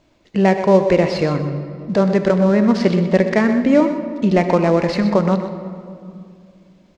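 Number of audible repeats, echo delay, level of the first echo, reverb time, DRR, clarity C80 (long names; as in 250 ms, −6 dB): 1, 125 ms, −11.0 dB, 2.4 s, 7.0 dB, 8.0 dB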